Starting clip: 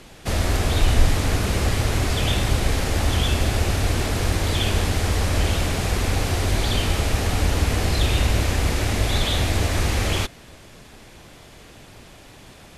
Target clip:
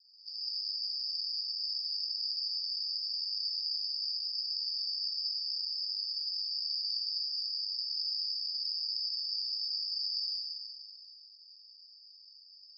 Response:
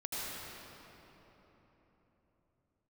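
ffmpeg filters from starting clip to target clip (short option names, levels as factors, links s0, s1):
-filter_complex "[0:a]asuperpass=centerf=4900:order=20:qfactor=6.8[s0];[1:a]atrim=start_sample=2205[s1];[s0][s1]afir=irnorm=-1:irlink=0,volume=1.78"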